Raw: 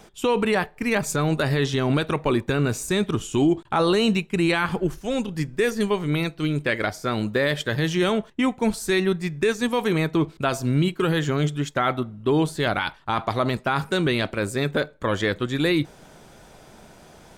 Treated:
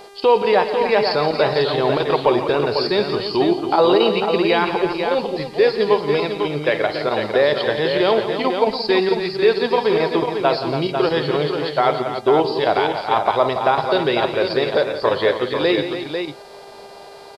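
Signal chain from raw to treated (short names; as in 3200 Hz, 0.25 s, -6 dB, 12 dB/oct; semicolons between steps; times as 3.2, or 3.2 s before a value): nonlinear frequency compression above 3800 Hz 4:1; tilt +2 dB/oct; chopper 4.5 Hz, depth 60%, duty 90%; band shelf 610 Hz +11 dB; on a send: tapped delay 54/118/172/282/497 ms -16.5/-15/-11.5/-10/-6.5 dB; on the sum: buzz 400 Hz, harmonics 32, -43 dBFS -6 dB/oct; gain -1 dB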